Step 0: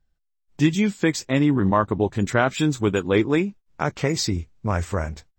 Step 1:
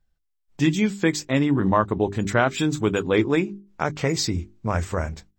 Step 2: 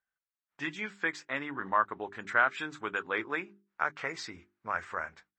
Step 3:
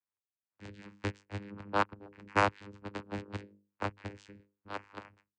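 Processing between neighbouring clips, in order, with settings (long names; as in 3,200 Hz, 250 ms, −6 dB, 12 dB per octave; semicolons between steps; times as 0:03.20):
mains-hum notches 50/100/150/200/250/300/350/400 Hz
resonant band-pass 1,500 Hz, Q 2.1
harmonic generator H 7 −15 dB, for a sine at −11.5 dBFS; channel vocoder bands 8, saw 101 Hz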